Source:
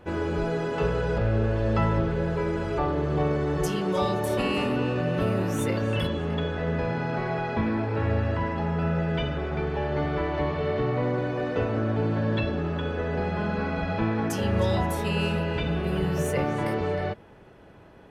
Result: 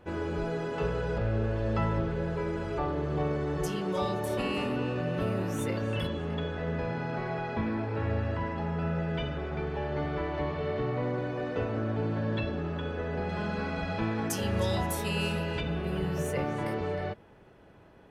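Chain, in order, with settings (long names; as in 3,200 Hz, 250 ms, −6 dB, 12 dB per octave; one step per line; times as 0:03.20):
0:13.29–0:15.61: high-shelf EQ 4,000 Hz +10 dB
level −5 dB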